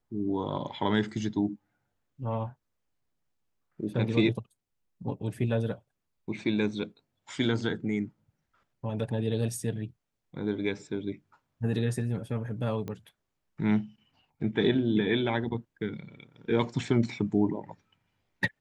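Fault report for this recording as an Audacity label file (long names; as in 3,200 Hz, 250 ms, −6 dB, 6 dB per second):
12.880000	12.880000	click −24 dBFS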